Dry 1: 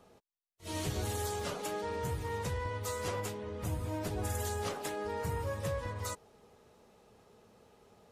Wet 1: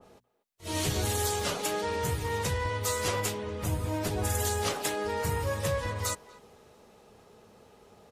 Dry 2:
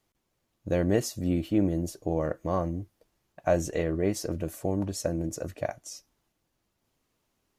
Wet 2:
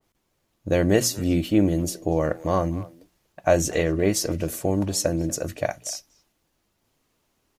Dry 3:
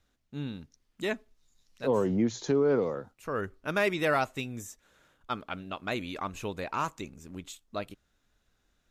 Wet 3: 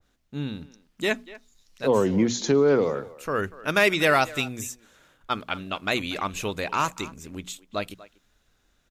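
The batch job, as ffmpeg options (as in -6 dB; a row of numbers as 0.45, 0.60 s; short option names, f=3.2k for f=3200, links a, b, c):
-filter_complex "[0:a]bandreject=f=60:t=h:w=6,bandreject=f=120:t=h:w=6,bandreject=f=180:t=h:w=6,bandreject=f=240:t=h:w=6,asplit=2[a][b];[b]adelay=240,highpass=300,lowpass=3.4k,asoftclip=type=hard:threshold=-21.5dB,volume=-18dB[c];[a][c]amix=inputs=2:normalize=0,adynamicequalizer=threshold=0.00562:dfrequency=1800:dqfactor=0.7:tfrequency=1800:tqfactor=0.7:attack=5:release=100:ratio=0.375:range=3:mode=boostabove:tftype=highshelf,volume=5.5dB"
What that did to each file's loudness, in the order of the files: +6.5, +6.0, +6.0 LU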